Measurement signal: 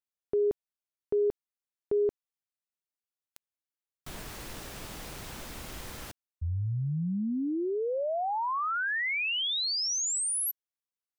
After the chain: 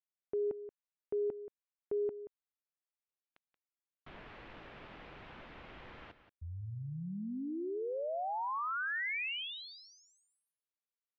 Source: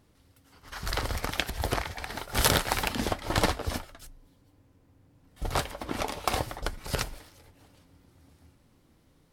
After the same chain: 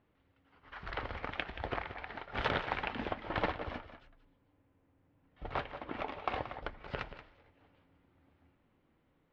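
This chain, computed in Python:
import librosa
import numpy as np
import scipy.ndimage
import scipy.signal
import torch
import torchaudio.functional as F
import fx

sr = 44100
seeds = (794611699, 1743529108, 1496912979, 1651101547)

y = scipy.signal.sosfilt(scipy.signal.butter(4, 2900.0, 'lowpass', fs=sr, output='sos'), x)
y = fx.low_shelf(y, sr, hz=210.0, db=-7.5)
y = y + 10.0 ** (-12.5 / 20.0) * np.pad(y, (int(179 * sr / 1000.0), 0))[:len(y)]
y = y * librosa.db_to_amplitude(-6.0)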